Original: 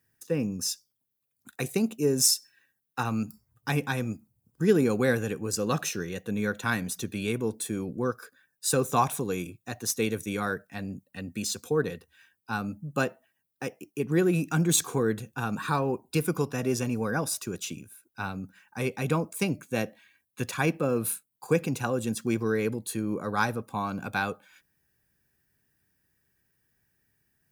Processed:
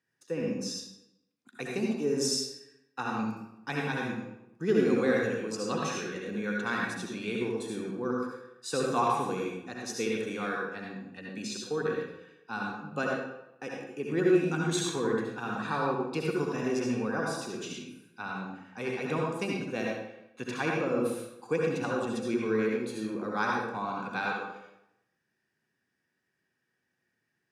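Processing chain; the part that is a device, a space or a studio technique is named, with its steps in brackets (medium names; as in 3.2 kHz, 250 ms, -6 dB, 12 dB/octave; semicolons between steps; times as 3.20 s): supermarket ceiling speaker (band-pass 210–5300 Hz; reverberation RT60 0.85 s, pre-delay 60 ms, DRR -2 dB); trim -5 dB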